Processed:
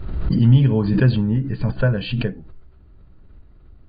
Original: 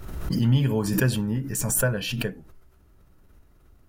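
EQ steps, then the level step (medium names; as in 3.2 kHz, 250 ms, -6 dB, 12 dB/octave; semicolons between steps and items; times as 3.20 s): brick-wall FIR low-pass 4.8 kHz; bass shelf 130 Hz +3.5 dB; bass shelf 480 Hz +6.5 dB; 0.0 dB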